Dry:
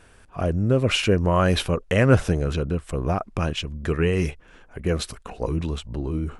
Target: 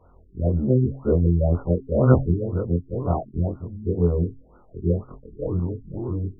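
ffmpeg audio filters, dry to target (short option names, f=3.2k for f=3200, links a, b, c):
-af "afftfilt=real='re':imag='-im':win_size=2048:overlap=0.75,bandreject=f=133.6:t=h:w=4,bandreject=f=267.2:t=h:w=4,afftfilt=real='re*lt(b*sr/1024,410*pow(1500/410,0.5+0.5*sin(2*PI*2*pts/sr)))':imag='im*lt(b*sr/1024,410*pow(1500/410,0.5+0.5*sin(2*PI*2*pts/sr)))':win_size=1024:overlap=0.75,volume=4.5dB"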